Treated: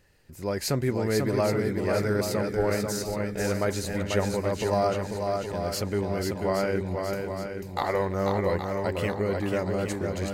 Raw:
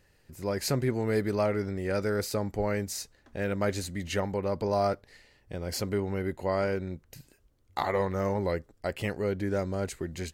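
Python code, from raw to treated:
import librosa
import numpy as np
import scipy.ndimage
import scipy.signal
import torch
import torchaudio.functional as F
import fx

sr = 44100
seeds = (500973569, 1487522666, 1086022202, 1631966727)

y = fx.echo_swing(x, sr, ms=820, ratio=1.5, feedback_pct=41, wet_db=-4.5)
y = y * librosa.db_to_amplitude(1.5)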